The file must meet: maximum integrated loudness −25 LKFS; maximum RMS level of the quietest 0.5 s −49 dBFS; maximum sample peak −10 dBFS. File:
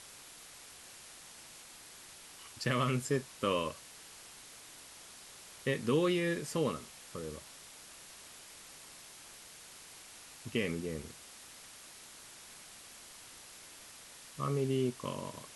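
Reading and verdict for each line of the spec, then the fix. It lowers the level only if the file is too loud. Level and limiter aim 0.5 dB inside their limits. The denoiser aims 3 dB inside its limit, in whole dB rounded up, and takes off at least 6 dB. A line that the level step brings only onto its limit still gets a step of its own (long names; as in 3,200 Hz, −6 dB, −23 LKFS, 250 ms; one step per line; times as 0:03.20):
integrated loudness −35.0 LKFS: in spec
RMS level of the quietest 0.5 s −53 dBFS: in spec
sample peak −17.0 dBFS: in spec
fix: no processing needed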